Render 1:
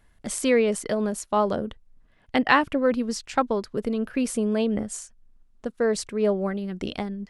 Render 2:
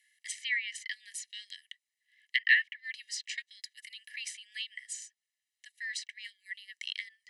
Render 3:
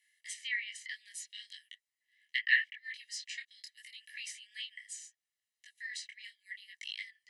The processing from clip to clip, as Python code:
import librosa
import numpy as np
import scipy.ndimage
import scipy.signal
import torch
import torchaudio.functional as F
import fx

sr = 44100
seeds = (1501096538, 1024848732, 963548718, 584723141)

y1 = scipy.signal.sosfilt(scipy.signal.cheby1(10, 1.0, 1700.0, 'highpass', fs=sr, output='sos'), x)
y1 = fx.env_lowpass_down(y1, sr, base_hz=2400.0, full_db=-28.5)
y1 = y1 + 0.67 * np.pad(y1, (int(1.0 * sr / 1000.0), 0))[:len(y1)]
y2 = fx.detune_double(y1, sr, cents=25)